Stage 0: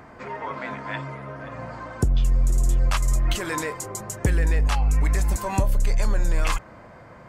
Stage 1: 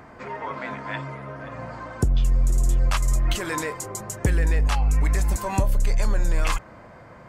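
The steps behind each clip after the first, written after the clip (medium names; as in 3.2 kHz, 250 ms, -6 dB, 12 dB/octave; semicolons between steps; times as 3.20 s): no audible change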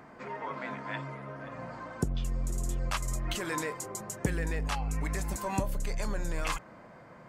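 resonant low shelf 120 Hz -6.5 dB, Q 1.5; trim -6 dB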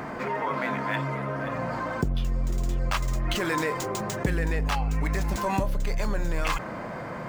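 median filter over 5 samples; level flattener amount 50%; trim +3 dB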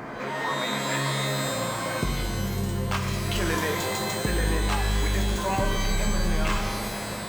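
pitch-shifted reverb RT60 1.5 s, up +12 st, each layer -2 dB, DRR 3 dB; trim -2 dB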